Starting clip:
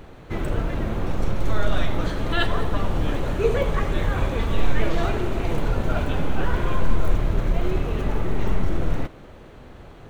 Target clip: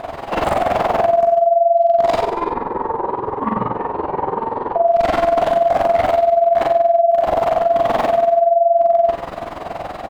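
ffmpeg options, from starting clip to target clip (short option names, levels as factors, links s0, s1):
-filter_complex "[0:a]asplit=2[s0][s1];[s1]adelay=41,volume=0.631[s2];[s0][s2]amix=inputs=2:normalize=0,flanger=delay=19.5:depth=7.7:speed=1.9,asettb=1/sr,asplit=3[s3][s4][s5];[s3]atrim=end=2.214[s6];[s4]atrim=start=2.21:end=4.76,asetpts=PTS-STARTPTS,afade=t=in:d=0.004:c=qsin,afade=t=out:st=2.546:d=0.004:c=qsin,bandpass=f=250:t=q:w=2.8:csg=0[s7];[s5]atrim=start=4.756[s8];[s6][s7]acrossfade=d=0.004:c1=hsin:c2=qsin[s9];[s9][s8]acrossfade=d=0.004:c1=qsin:c2=hsin,acompressor=threshold=0.1:ratio=6,asoftclip=type=tanh:threshold=0.0316,aeval=exprs='val(0)*sin(2*PI*680*n/s)':c=same,aecho=1:1:40|90|152.5|230.6|328.3:0.631|0.398|0.251|0.158|0.1,tremolo=f=21:d=0.75,alimiter=level_in=20:limit=0.891:release=50:level=0:latency=1,volume=0.501"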